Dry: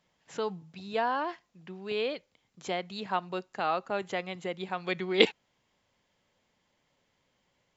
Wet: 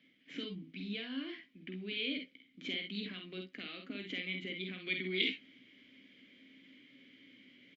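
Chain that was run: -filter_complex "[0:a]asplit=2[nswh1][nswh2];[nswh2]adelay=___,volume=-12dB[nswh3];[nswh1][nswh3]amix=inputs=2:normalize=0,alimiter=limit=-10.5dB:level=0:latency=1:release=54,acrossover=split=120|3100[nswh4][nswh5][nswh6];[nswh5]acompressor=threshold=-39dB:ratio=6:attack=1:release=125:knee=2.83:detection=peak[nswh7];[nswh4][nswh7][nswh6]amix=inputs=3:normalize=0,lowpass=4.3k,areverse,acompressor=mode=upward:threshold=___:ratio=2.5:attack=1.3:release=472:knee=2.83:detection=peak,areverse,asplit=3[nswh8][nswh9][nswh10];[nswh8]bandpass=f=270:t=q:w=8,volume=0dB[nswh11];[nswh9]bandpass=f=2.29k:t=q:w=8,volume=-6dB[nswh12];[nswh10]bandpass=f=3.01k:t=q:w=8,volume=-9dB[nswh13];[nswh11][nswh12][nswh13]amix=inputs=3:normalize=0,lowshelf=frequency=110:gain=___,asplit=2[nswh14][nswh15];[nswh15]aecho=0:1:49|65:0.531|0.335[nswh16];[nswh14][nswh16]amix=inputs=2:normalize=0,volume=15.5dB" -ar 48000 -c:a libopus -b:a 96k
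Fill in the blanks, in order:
15, -50dB, -8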